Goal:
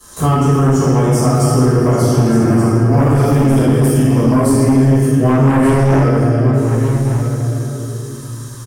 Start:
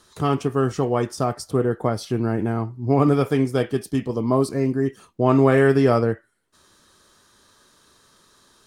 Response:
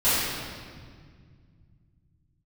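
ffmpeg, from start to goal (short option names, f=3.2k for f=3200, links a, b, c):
-filter_complex "[0:a]highshelf=f=4.2k:g=-10[a];[1:a]atrim=start_sample=2205,asetrate=48510,aresample=44100[b];[a][b]afir=irnorm=-1:irlink=0,asplit=2[c][d];[d]aeval=exprs='5.62*sin(PI/2*3.98*val(0)/5.62)':c=same,volume=-7dB[e];[c][e]amix=inputs=2:normalize=0,acrossover=split=220|1800[f][g][h];[f]acompressor=threshold=-3dB:ratio=4[i];[g]acompressor=threshold=-6dB:ratio=4[j];[h]acompressor=threshold=-24dB:ratio=4[k];[i][j][k]amix=inputs=3:normalize=0,asplit=2[l][m];[m]aecho=0:1:1178:0.316[n];[l][n]amix=inputs=2:normalize=0,aexciter=amount=5.6:drive=7.5:freq=5.9k,volume=-10.5dB"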